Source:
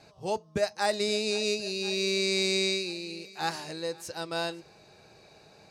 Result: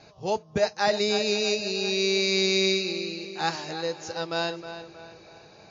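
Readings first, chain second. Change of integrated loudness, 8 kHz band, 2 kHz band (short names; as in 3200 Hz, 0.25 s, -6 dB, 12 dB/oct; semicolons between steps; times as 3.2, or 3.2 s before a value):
+4.0 dB, +2.0 dB, +4.0 dB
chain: tape echo 0.317 s, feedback 46%, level -9.5 dB, low-pass 3300 Hz; gain +4 dB; MP3 40 kbps 16000 Hz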